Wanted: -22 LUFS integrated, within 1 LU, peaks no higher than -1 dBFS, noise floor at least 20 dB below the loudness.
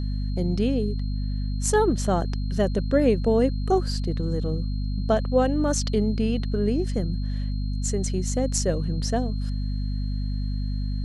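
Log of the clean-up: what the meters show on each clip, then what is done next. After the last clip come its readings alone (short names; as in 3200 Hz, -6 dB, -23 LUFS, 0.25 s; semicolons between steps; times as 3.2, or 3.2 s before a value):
hum 50 Hz; harmonics up to 250 Hz; hum level -24 dBFS; steady tone 4200 Hz; tone level -47 dBFS; loudness -25.5 LUFS; peak -8.0 dBFS; loudness target -22.0 LUFS
-> notches 50/100/150/200/250 Hz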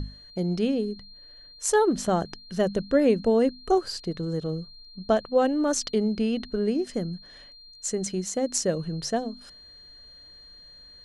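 hum none; steady tone 4200 Hz; tone level -47 dBFS
-> notch 4200 Hz, Q 30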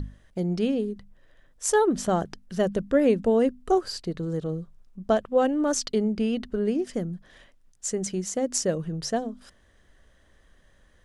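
steady tone none; loudness -26.5 LUFS; peak -10.0 dBFS; loudness target -22.0 LUFS
-> gain +4.5 dB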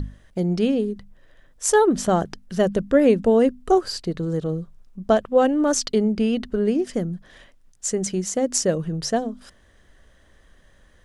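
loudness -22.0 LUFS; peak -5.5 dBFS; noise floor -56 dBFS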